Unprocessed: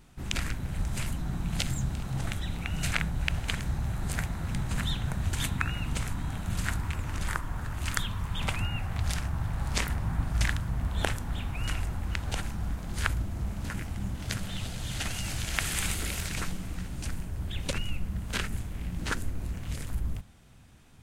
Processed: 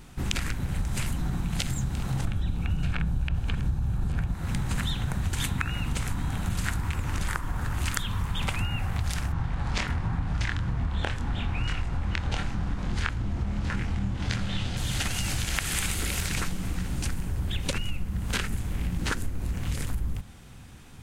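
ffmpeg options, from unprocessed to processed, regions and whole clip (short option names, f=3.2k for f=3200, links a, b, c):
-filter_complex "[0:a]asettb=1/sr,asplit=3[a][b][c];[a]atrim=end=2.254[d];[b]atrim=start=2.25:end=4.34,asetpts=PTS-STARTPTS,afade=t=in:d=0.004:c=qsin,afade=t=out:st=2.086:d=0.004:c=qsin,acrossover=split=3600[e][f];[f]acompressor=threshold=-51dB:ratio=4:attack=1:release=60[g];[e][g]amix=inputs=2:normalize=0,lowshelf=f=290:g=9.5,bandreject=f=2k:w=5.8[h];[c]atrim=start=4.336[i];[d][h]acrossfade=d=0.004:c1=hsin:c2=qsin[j];[j][i]acrossfade=d=0.004:c1=qsin:c2=hsin,asettb=1/sr,asplit=3[k][l][m];[k]atrim=end=9.324[n];[l]atrim=start=9.32:end=14.77,asetpts=PTS-STARTPTS,afade=t=in:d=0.004:c=qsin,afade=t=out:st=5.446:d=0.004:c=qsin,lowpass=5k,asplit=2[o][p];[p]adelay=25,volume=-5dB[q];[o][q]amix=inputs=2:normalize=0,atrim=end_sample=240345[r];[m]atrim=start=14.766[s];[n][r]acrossfade=d=0.004:c1=hsin:c2=qsin[t];[t][s]acrossfade=d=0.004:c1=qsin:c2=hsin,bandreject=f=640:w=12,acompressor=threshold=-33dB:ratio=6,volume=8.5dB"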